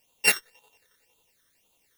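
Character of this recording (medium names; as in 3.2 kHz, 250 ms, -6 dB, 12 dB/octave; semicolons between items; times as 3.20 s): a buzz of ramps at a fixed pitch in blocks of 16 samples; chopped level 11 Hz, depth 60%, duty 50%; a quantiser's noise floor 12-bit, dither triangular; phasing stages 12, 1.9 Hz, lowest notch 800–1800 Hz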